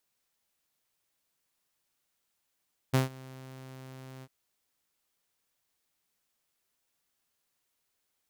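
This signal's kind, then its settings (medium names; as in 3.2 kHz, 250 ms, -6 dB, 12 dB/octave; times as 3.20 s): ADSR saw 131 Hz, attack 17 ms, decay 139 ms, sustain -24 dB, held 1.30 s, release 48 ms -18 dBFS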